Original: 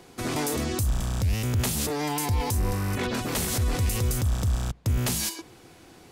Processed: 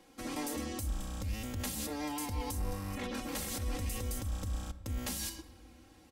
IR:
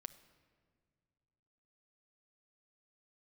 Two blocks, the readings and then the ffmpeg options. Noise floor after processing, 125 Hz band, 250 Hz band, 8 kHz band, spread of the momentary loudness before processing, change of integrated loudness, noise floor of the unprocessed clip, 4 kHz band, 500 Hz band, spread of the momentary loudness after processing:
−60 dBFS, −14.0 dB, −8.5 dB, −10.0 dB, 3 LU, −11.0 dB, −51 dBFS, −10.0 dB, −11.0 dB, 4 LU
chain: -filter_complex "[0:a]aecho=1:1:3.7:0.86[link_01];[1:a]atrim=start_sample=2205[link_02];[link_01][link_02]afir=irnorm=-1:irlink=0,volume=-7.5dB"

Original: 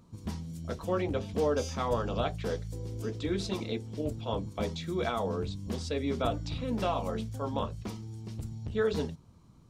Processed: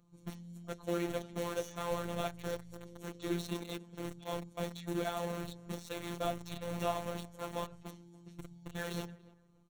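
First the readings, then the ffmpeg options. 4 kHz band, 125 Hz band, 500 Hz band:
−5.0 dB, −9.0 dB, −7.0 dB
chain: -filter_complex "[0:a]asplit=2[link_01][link_02];[link_02]acrusher=bits=4:mix=0:aa=0.000001,volume=-3dB[link_03];[link_01][link_03]amix=inputs=2:normalize=0,asuperstop=centerf=4900:order=4:qfactor=5.9,asplit=2[link_04][link_05];[link_05]adelay=288,lowpass=frequency=1700:poles=1,volume=-20dB,asplit=2[link_06][link_07];[link_07]adelay=288,lowpass=frequency=1700:poles=1,volume=0.24[link_08];[link_04][link_06][link_08]amix=inputs=3:normalize=0,afftfilt=real='hypot(re,im)*cos(PI*b)':imag='0':win_size=1024:overlap=0.75,volume=-7dB"

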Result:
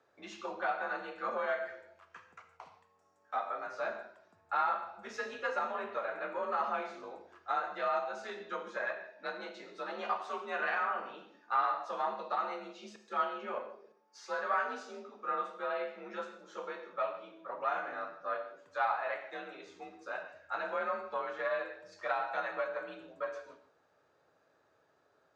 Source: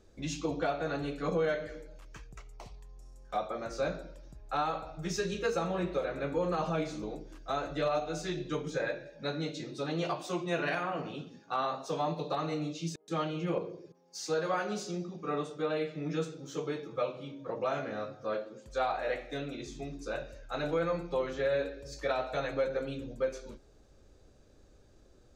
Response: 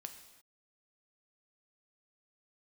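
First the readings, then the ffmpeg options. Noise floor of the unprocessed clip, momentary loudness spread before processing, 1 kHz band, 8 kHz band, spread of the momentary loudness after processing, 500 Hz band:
−60 dBFS, 11 LU, +2.0 dB, below −10 dB, 15 LU, −5.5 dB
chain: -filter_complex "[0:a]aeval=exprs='0.0891*(cos(1*acos(clip(val(0)/0.0891,-1,1)))-cos(1*PI/2))+0.0126*(cos(2*acos(clip(val(0)/0.0891,-1,1)))-cos(2*PI/2))':channel_layout=same,bandpass=frequency=1200:width_type=q:width=1.5:csg=0,afreqshift=46[link_01];[1:a]atrim=start_sample=2205,afade=type=out:start_time=0.22:duration=0.01,atrim=end_sample=10143[link_02];[link_01][link_02]afir=irnorm=-1:irlink=0,volume=8.5dB"

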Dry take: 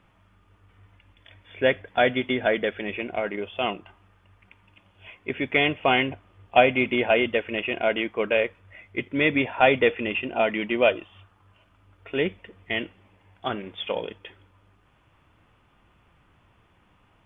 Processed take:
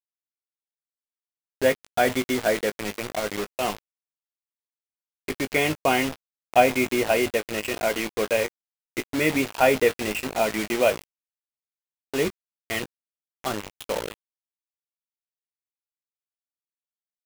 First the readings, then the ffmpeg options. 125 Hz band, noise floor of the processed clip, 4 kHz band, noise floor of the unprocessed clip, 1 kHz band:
0.0 dB, below −85 dBFS, can't be measured, −62 dBFS, 0.0 dB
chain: -filter_complex "[0:a]lowpass=frequency=2100:poles=1,acrusher=bits=4:mix=0:aa=0.000001,asplit=2[link_01][link_02];[link_02]adelay=19,volume=-10.5dB[link_03];[link_01][link_03]amix=inputs=2:normalize=0"

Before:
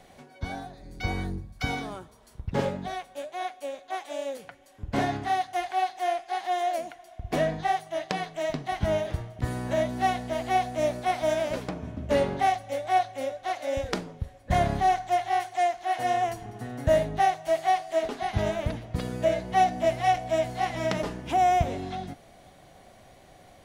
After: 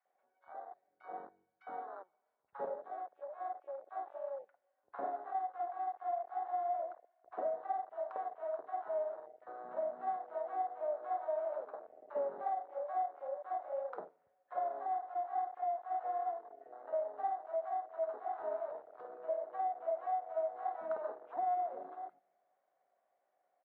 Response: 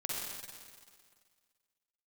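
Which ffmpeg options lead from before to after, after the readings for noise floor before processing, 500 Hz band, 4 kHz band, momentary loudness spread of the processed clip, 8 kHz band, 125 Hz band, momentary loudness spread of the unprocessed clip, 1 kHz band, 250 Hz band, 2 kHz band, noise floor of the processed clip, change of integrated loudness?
−54 dBFS, −10.5 dB, below −35 dB, 12 LU, below −35 dB, below −40 dB, 13 LU, −11.0 dB, −27.0 dB, −23.0 dB, −81 dBFS, −11.5 dB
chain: -filter_complex "[0:a]asuperpass=centerf=920:order=4:qfactor=0.93,acompressor=threshold=-26dB:ratio=4,acrossover=split=1000[link_01][link_02];[link_01]adelay=50[link_03];[link_03][link_02]amix=inputs=2:normalize=0,asplit=2[link_04][link_05];[1:a]atrim=start_sample=2205[link_06];[link_05][link_06]afir=irnorm=-1:irlink=0,volume=-19dB[link_07];[link_04][link_07]amix=inputs=2:normalize=0,afwtdn=0.0126,volume=-6dB"

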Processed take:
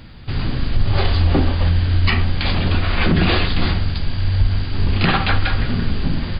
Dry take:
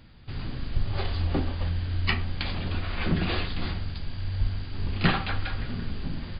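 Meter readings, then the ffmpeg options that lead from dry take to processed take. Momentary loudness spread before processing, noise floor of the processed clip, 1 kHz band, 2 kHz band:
9 LU, −25 dBFS, +10.5 dB, +10.0 dB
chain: -af "alimiter=level_in=17.5dB:limit=-1dB:release=50:level=0:latency=1,volume=-5dB"

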